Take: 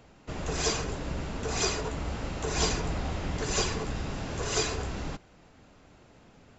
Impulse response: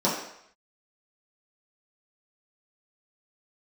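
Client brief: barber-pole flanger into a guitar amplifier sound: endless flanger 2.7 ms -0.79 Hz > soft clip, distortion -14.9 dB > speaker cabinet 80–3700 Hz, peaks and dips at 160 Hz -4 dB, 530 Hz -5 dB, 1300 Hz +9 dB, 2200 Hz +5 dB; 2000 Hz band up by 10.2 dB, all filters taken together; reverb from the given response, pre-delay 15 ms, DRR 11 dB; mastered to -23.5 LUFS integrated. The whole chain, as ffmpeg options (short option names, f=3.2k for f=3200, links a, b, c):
-filter_complex "[0:a]equalizer=f=2k:t=o:g=8.5,asplit=2[a][b];[1:a]atrim=start_sample=2205,adelay=15[c];[b][c]afir=irnorm=-1:irlink=0,volume=-25dB[d];[a][d]amix=inputs=2:normalize=0,asplit=2[e][f];[f]adelay=2.7,afreqshift=-0.79[g];[e][g]amix=inputs=2:normalize=1,asoftclip=threshold=-25.5dB,highpass=80,equalizer=f=160:t=q:w=4:g=-4,equalizer=f=530:t=q:w=4:g=-5,equalizer=f=1.3k:t=q:w=4:g=9,equalizer=f=2.2k:t=q:w=4:g=5,lowpass=f=3.7k:w=0.5412,lowpass=f=3.7k:w=1.3066,volume=10dB"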